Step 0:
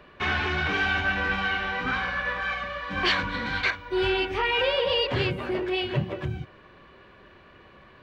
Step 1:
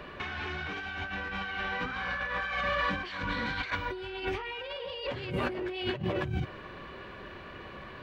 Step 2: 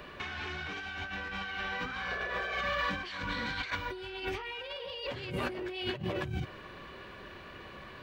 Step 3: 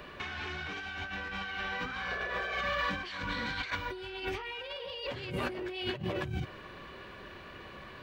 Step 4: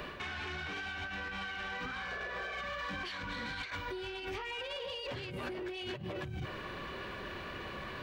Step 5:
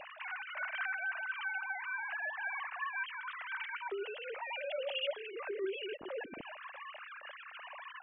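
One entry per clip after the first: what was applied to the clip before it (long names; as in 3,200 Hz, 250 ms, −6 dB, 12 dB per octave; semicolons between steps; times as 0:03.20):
compressor whose output falls as the input rises −35 dBFS, ratio −1
high-shelf EQ 4,800 Hz +10.5 dB; sound drawn into the spectrogram noise, 0:02.11–0:02.62, 350–760 Hz −40 dBFS; level −3.5 dB
no processing that can be heard
reversed playback; downward compressor 6 to 1, threshold −42 dBFS, peak gain reduction 13 dB; reversed playback; soft clipping −38 dBFS, distortion −19 dB; level +6 dB
three sine waves on the formant tracks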